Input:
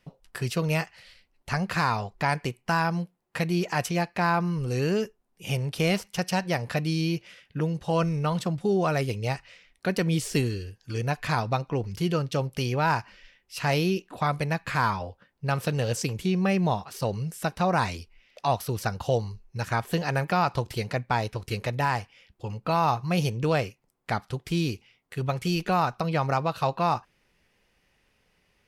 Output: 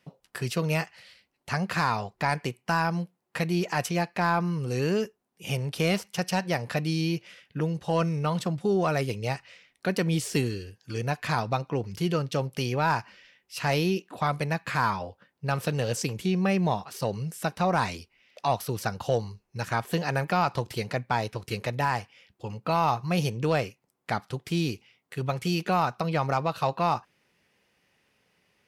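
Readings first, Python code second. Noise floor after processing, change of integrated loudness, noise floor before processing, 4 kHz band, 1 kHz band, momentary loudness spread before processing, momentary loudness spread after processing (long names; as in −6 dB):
−76 dBFS, −1.0 dB, −69 dBFS, −0.5 dB, −0.5 dB, 8 LU, 9 LU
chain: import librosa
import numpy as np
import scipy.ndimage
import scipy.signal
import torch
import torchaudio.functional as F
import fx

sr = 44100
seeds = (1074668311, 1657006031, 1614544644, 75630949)

y = scipy.signal.sosfilt(scipy.signal.butter(2, 110.0, 'highpass', fs=sr, output='sos'), x)
y = 10.0 ** (-10.5 / 20.0) * np.tanh(y / 10.0 ** (-10.5 / 20.0))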